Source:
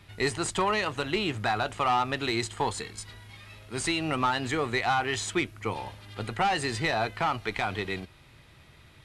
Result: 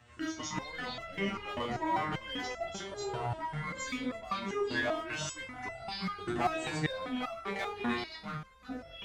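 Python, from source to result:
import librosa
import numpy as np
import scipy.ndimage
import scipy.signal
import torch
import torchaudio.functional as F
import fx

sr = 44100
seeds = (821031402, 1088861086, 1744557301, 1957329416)

p1 = fx.pitch_glide(x, sr, semitones=-5.5, runs='ending unshifted')
p2 = scipy.signal.sosfilt(scipy.signal.butter(2, 69.0, 'highpass', fs=sr, output='sos'), p1)
p3 = fx.hum_notches(p2, sr, base_hz=50, count=3)
p4 = fx.rider(p3, sr, range_db=4, speed_s=0.5)
p5 = p3 + (p4 * librosa.db_to_amplitude(2.0))
p6 = np.clip(p5, -10.0 ** (-14.0 / 20.0), 10.0 ** (-14.0 / 20.0))
p7 = fx.echo_pitch(p6, sr, ms=217, semitones=-7, count=2, db_per_echo=-3.0)
p8 = p7 + fx.echo_bbd(p7, sr, ms=174, stages=4096, feedback_pct=61, wet_db=-17.5, dry=0)
y = fx.resonator_held(p8, sr, hz=5.1, low_hz=120.0, high_hz=670.0)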